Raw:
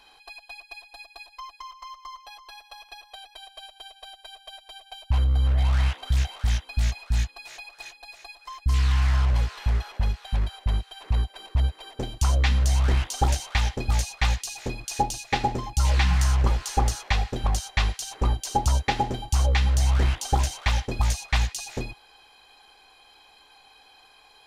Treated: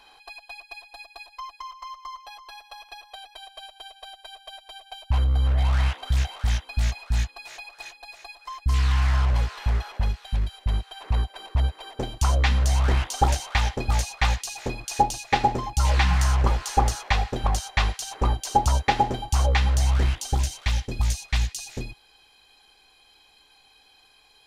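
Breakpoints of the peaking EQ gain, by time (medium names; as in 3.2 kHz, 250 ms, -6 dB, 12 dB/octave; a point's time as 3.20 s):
peaking EQ 900 Hz 2.3 oct
9.97 s +3 dB
10.51 s -7 dB
10.87 s +4.5 dB
19.66 s +4.5 dB
20.38 s -7.5 dB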